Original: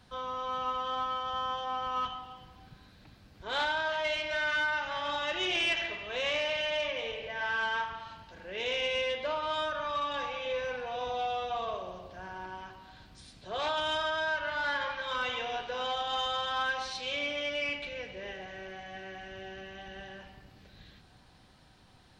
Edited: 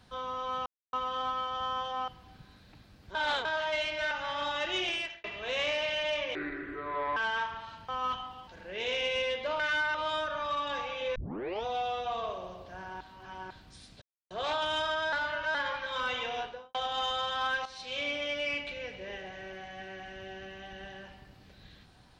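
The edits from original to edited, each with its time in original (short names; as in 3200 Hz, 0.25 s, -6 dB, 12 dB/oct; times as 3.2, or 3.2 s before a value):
0.66 insert silence 0.27 s
1.81–2.4 move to 8.27
3.47–3.77 reverse
4.43–4.78 move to 9.39
5.44–5.91 fade out
7.02–7.55 speed 65%
10.6 tape start 0.49 s
12.45–12.95 reverse
13.46 insert silence 0.29 s
14.28–14.7 reverse
15.53–15.9 studio fade out
16.81–17.17 fade in, from -13 dB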